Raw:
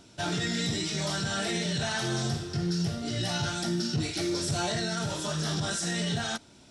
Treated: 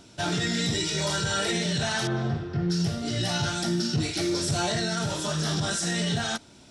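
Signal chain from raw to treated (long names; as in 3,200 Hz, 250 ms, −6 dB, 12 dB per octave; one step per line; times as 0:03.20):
0:00.74–0:01.52: comb filter 2.1 ms, depth 58%
0:02.07–0:02.70: low-pass filter 2,000 Hz 12 dB per octave
level +3 dB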